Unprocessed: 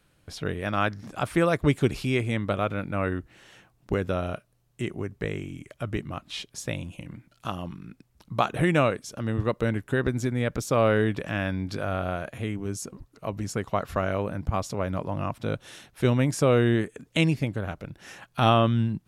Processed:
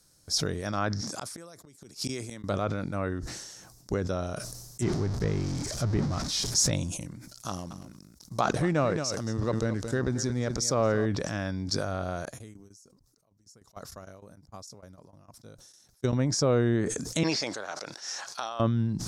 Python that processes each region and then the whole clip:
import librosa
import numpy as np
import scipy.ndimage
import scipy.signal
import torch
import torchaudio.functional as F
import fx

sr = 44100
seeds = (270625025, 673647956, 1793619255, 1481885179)

y = fx.chain(x, sr, fx.highpass(hz=140.0, slope=12),
    fx.peak_eq(hz=3100.0, db=2.0, octaves=3.0),
    fx.gate_flip(shuts_db=-18.0, range_db=-32), at=(1.01, 2.44))
y = fx.chain(y, sr, fx.zero_step(step_db=-30.0),
    fx.bass_treble(bass_db=5, treble_db=-6), at=(4.82, 6.71))
y = fx.chain(y, sr, fx.law_mismatch(coded='A'),
    fx.echo_single(ms=224, db=-13.5), at=(7.48, 11.06))
y = fx.chain(y, sr, fx.tremolo_shape(shape='saw_down', hz=6.6, depth_pct=85),
    fx.upward_expand(threshold_db=-41.0, expansion=2.5), at=(12.25, 16.13))
y = fx.chain(y, sr, fx.bandpass_edges(low_hz=700.0, high_hz=5100.0),
    fx.over_compress(threshold_db=-31.0, ratio=-1.0), at=(17.23, 18.6))
y = fx.env_lowpass_down(y, sr, base_hz=2600.0, full_db=-20.0)
y = fx.high_shelf_res(y, sr, hz=3900.0, db=12.0, q=3.0)
y = fx.sustainer(y, sr, db_per_s=38.0)
y = y * 10.0 ** (-3.5 / 20.0)